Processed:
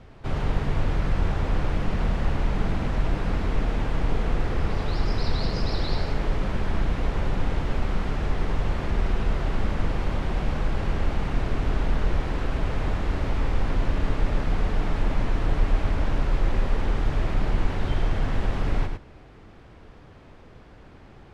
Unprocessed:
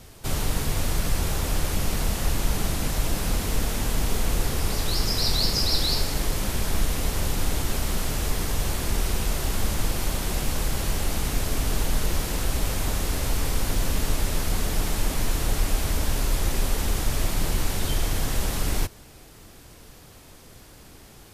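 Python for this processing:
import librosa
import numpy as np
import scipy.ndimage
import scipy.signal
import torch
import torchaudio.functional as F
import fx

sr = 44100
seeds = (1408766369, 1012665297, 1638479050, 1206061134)

p1 = scipy.signal.sosfilt(scipy.signal.butter(2, 2100.0, 'lowpass', fs=sr, output='sos'), x)
y = p1 + fx.echo_single(p1, sr, ms=105, db=-6.0, dry=0)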